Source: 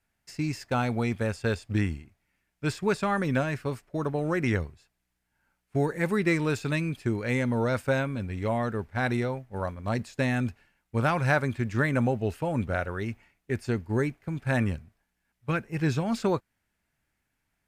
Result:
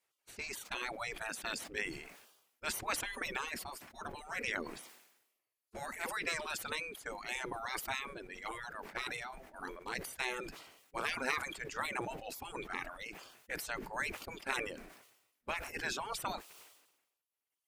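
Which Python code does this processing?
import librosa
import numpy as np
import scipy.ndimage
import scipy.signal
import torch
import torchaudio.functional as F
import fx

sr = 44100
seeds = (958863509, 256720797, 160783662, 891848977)

y = fx.spec_gate(x, sr, threshold_db=-15, keep='weak')
y = fx.dereverb_blind(y, sr, rt60_s=2.0)
y = fx.sustainer(y, sr, db_per_s=60.0)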